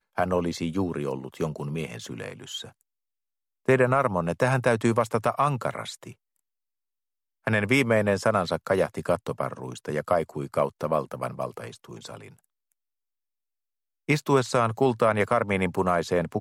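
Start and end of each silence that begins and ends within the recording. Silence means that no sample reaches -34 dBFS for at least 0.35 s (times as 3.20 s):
2.65–3.68 s
6.10–7.47 s
12.26–14.09 s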